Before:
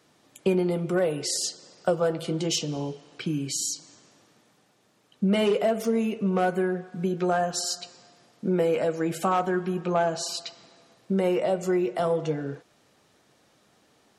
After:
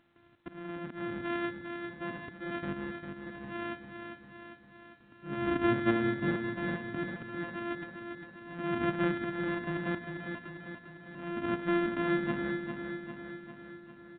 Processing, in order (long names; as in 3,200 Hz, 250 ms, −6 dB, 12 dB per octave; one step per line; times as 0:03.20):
samples sorted by size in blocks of 128 samples
sample-and-hold tremolo 2.2 Hz
volume swells 542 ms
high-frequency loss of the air 130 metres
noise gate with hold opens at −57 dBFS
graphic EQ with 15 bands 100 Hz +6 dB, 250 Hz +11 dB, 1,600 Hz +8 dB
upward compression, threshold −52 dBFS
repeating echo 400 ms, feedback 60%, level −6.5 dB
level −5 dB
A-law companding 64 kbit/s 8,000 Hz